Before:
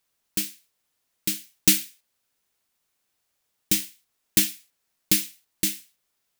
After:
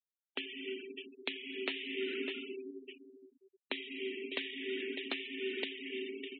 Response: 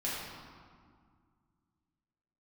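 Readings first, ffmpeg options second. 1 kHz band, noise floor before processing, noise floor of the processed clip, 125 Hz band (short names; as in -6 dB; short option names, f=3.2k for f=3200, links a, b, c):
n/a, -76 dBFS, under -85 dBFS, under -30 dB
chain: -filter_complex "[0:a]tiltshelf=f=780:g=-6.5,asplit=2[a][b];[1:a]atrim=start_sample=2205,lowshelf=f=280:g=2.5[c];[b][c]afir=irnorm=-1:irlink=0,volume=-6.5dB[d];[a][d]amix=inputs=2:normalize=0,asoftclip=type=hard:threshold=-3dB,aecho=1:1:602|1204:0.0708|0.0234,acompressor=threshold=-31dB:ratio=8,highpass=f=180:t=q:w=0.5412,highpass=f=180:t=q:w=1.307,lowpass=f=3.1k:t=q:w=0.5176,lowpass=f=3.1k:t=q:w=0.7071,lowpass=f=3.1k:t=q:w=1.932,afreqshift=76,afftfilt=real='re*gte(hypot(re,im),0.00501)':imag='im*gte(hypot(re,im),0.00501)':win_size=1024:overlap=0.75,volume=6.5dB"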